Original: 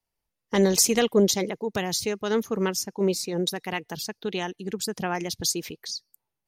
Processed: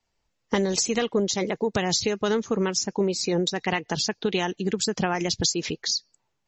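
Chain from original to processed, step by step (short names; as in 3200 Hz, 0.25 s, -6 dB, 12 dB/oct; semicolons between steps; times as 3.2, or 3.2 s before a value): 0.83–1.71 dynamic EQ 1300 Hz, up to +4 dB, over -38 dBFS, Q 1.7; compressor 10:1, threshold -29 dBFS, peak gain reduction 14.5 dB; gain +9 dB; MP3 32 kbps 32000 Hz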